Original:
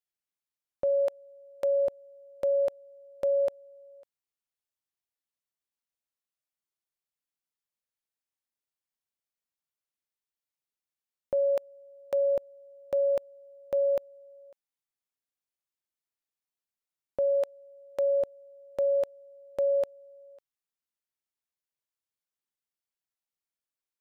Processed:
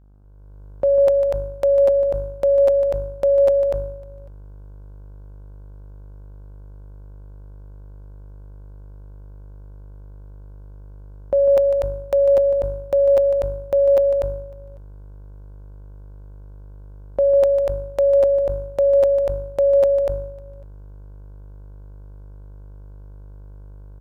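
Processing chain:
hum with harmonics 50 Hz, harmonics 32, −51 dBFS −9 dB per octave
on a send: loudspeakers that aren't time-aligned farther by 51 metres −10 dB, 83 metres −4 dB
on the sum: automatic gain control gain up to 8.5 dB
parametric band 740 Hz +2 dB
level that may fall only so fast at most 63 dB per second

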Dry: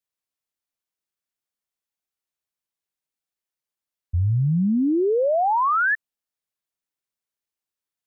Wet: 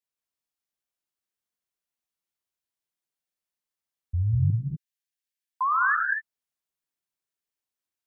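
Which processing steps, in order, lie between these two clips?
0:04.50–0:05.61: linear-phase brick-wall high-pass 1,500 Hz
reverb whose tail is shaped and stops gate 270 ms rising, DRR 1.5 dB
level −4 dB

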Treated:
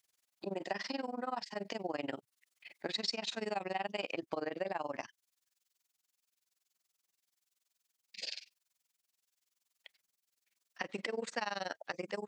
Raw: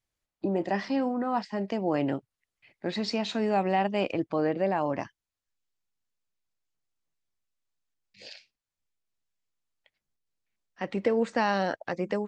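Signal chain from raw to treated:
high-pass filter 480 Hz 6 dB per octave
high-shelf EQ 2,700 Hz +11 dB
downward compressor 3 to 1, threshold −40 dBFS, peak gain reduction 14.5 dB
amplitude modulation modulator 21 Hz, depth 90%
level +5.5 dB

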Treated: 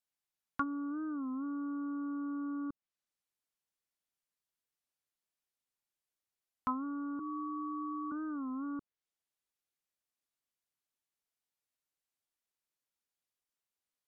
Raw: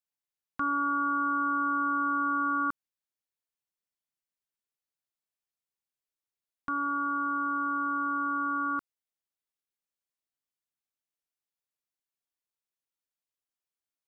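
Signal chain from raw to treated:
0:07.19–0:08.12: three sine waves on the formant tracks
treble cut that deepens with the level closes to 330 Hz, closed at −26 dBFS
wow of a warped record 33 1/3 rpm, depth 160 cents

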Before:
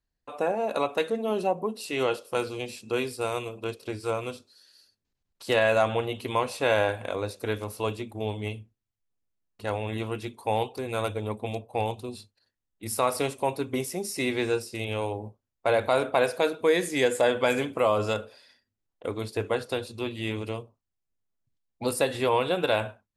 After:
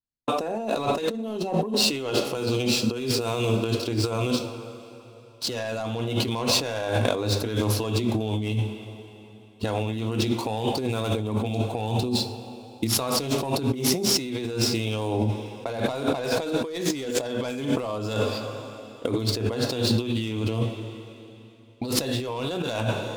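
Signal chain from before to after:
running median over 5 samples
noise gate −49 dBFS, range −31 dB
parametric band 5,000 Hz +10 dB 2.9 octaves
mains-hum notches 50/100 Hz
soft clipping −15.5 dBFS, distortion −14 dB
octave-band graphic EQ 125/250/2,000 Hz +6/+8/−8 dB
on a send at −9 dB: convolution reverb, pre-delay 3 ms
on the sum: brickwall limiter −15.5 dBFS, peak gain reduction 4.5 dB
compressor whose output falls as the input rises −34 dBFS, ratio −1
level +7.5 dB

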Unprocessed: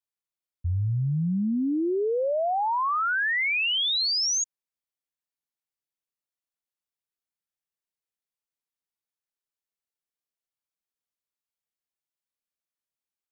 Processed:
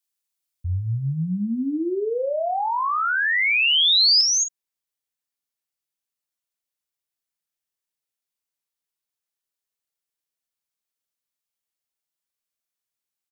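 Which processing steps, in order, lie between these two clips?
high-shelf EQ 2,800 Hz +12 dB, from 0:04.21 +5.5 dB
double-tracking delay 44 ms −8.5 dB

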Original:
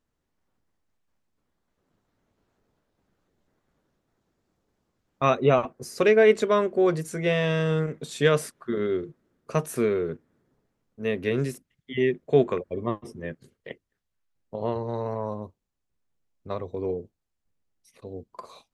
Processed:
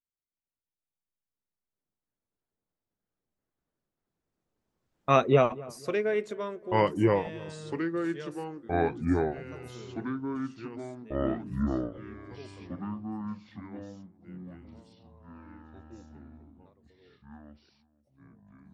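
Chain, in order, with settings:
source passing by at 0:05.21, 9 m/s, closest 2.3 metres
feedback echo with a low-pass in the loop 245 ms, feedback 39%, low-pass 1,500 Hz, level −20 dB
delay with pitch and tempo change per echo 313 ms, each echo −4 semitones, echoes 3

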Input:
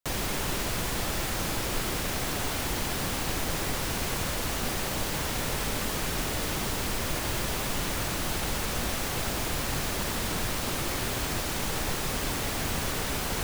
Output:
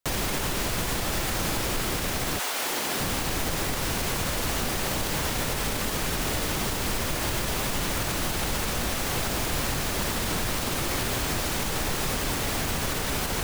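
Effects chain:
0:02.38–0:02.99: high-pass filter 740 Hz → 200 Hz 12 dB per octave
brickwall limiter −21.5 dBFS, peak gain reduction 5 dB
level +4 dB

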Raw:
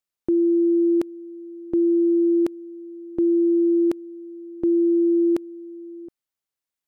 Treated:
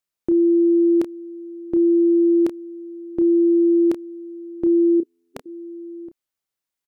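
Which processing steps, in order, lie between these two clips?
0:05.00–0:05.46: gate on every frequency bin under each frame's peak −15 dB weak
double-tracking delay 30 ms −9 dB
level +1.5 dB

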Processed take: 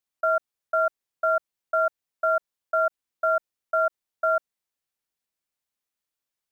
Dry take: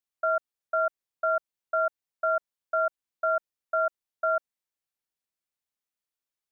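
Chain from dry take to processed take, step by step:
one scale factor per block 7 bits
level +3 dB

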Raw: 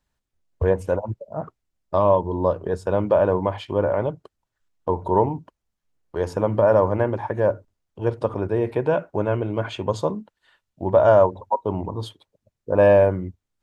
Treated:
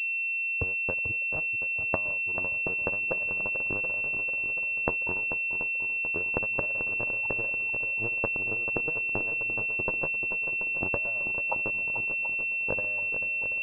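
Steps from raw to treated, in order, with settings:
downward compressor 8 to 1, threshold −25 dBFS, peak gain reduction 14.5 dB
transient designer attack +7 dB, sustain −3 dB
power curve on the samples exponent 2
on a send: feedback echo with a long and a short gap by turns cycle 732 ms, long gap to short 1.5 to 1, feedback 52%, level −9.5 dB
on the sum: switching amplifier with a slow clock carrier 2,700 Hz
level −1 dB

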